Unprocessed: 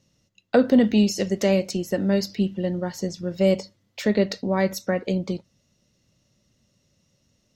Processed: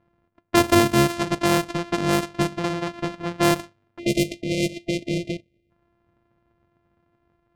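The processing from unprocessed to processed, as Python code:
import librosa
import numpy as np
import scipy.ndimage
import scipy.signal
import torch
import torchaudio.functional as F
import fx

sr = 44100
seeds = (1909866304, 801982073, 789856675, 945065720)

y = np.r_[np.sort(x[:len(x) // 128 * 128].reshape(-1, 128), axis=1).ravel(), x[len(x) // 128 * 128:]]
y = fx.spec_erase(y, sr, start_s=3.99, length_s=1.72, low_hz=670.0, high_hz=2000.0)
y = fx.env_lowpass(y, sr, base_hz=1800.0, full_db=-15.5)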